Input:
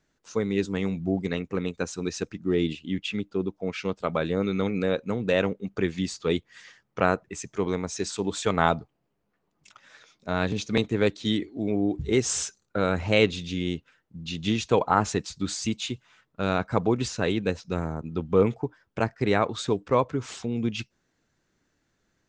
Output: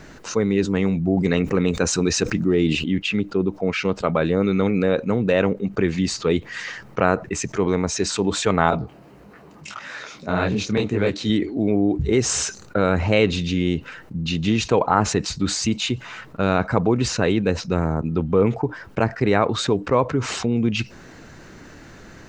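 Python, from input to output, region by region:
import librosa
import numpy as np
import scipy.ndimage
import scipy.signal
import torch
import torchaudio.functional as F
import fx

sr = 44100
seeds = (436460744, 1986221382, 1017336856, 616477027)

y = fx.chain(x, sr, fx.high_shelf(hz=7900.0, db=8.5),
    fx.env_flatten(amount_pct=50), at=(1.17, 2.84))
y = fx.chain(y, sr, fx.highpass(hz=41.0, slope=12),
    fx.detune_double(cents=60), at=(8.7, 11.3))
y = fx.high_shelf(y, sr, hz=4400.0, db=-8.5)
y = fx.notch(y, sr, hz=3400.0, q=13.0)
y = fx.env_flatten(y, sr, amount_pct=50)
y = y * 10.0 ** (2.0 / 20.0)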